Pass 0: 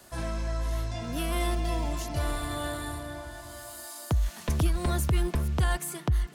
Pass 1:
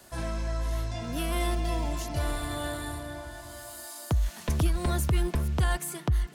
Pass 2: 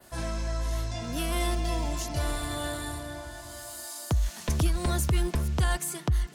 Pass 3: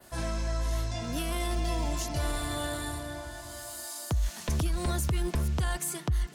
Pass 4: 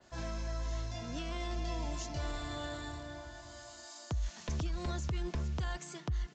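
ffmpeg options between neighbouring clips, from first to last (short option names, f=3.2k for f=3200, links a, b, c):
-af "bandreject=f=1.2k:w=24"
-af "adynamicequalizer=threshold=0.00178:dfrequency=6300:dqfactor=0.87:tfrequency=6300:tqfactor=0.87:attack=5:release=100:ratio=0.375:range=2.5:mode=boostabove:tftype=bell"
-af "alimiter=limit=-21.5dB:level=0:latency=1:release=26"
-af "aresample=16000,aresample=44100,volume=-7dB"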